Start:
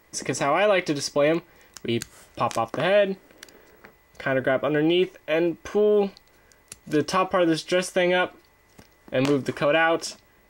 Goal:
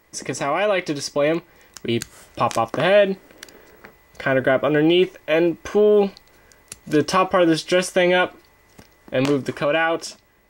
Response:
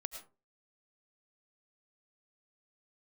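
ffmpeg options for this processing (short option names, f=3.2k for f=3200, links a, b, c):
-af "dynaudnorm=f=480:g=7:m=5dB"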